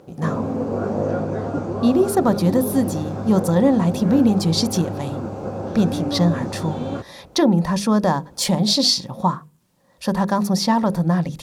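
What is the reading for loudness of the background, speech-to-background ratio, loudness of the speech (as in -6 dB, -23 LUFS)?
-27.0 LUFS, 7.0 dB, -20.0 LUFS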